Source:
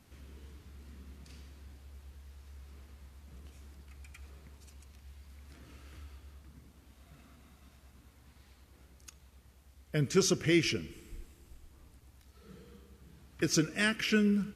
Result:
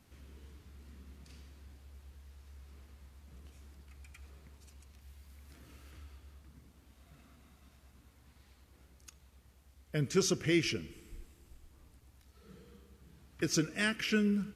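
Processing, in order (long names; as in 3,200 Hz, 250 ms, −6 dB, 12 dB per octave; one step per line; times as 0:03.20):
0:05.01–0:05.91: high-shelf EQ 10,000 Hz +7 dB
level −2.5 dB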